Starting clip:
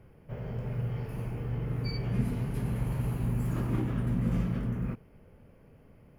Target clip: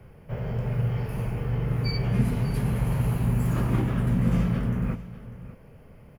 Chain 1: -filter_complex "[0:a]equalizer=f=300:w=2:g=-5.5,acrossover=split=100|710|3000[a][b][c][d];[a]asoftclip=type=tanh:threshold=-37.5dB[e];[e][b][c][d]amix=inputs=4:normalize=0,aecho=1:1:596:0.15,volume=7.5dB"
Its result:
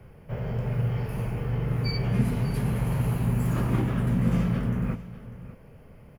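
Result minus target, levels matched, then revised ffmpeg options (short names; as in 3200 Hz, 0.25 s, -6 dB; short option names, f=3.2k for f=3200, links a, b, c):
soft clip: distortion +9 dB
-filter_complex "[0:a]equalizer=f=300:w=2:g=-5.5,acrossover=split=100|710|3000[a][b][c][d];[a]asoftclip=type=tanh:threshold=-29.5dB[e];[e][b][c][d]amix=inputs=4:normalize=0,aecho=1:1:596:0.15,volume=7.5dB"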